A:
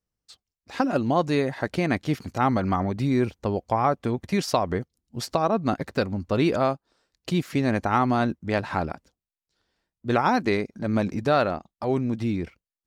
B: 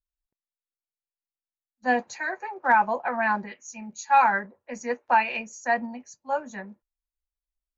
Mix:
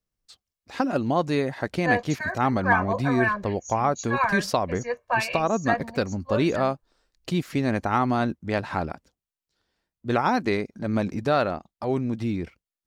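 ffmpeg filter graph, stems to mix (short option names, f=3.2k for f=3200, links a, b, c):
-filter_complex "[0:a]volume=-1dB[a];[1:a]asubboost=boost=6:cutoff=130,aecho=1:1:1.8:0.96,volume=-2.5dB[b];[a][b]amix=inputs=2:normalize=0"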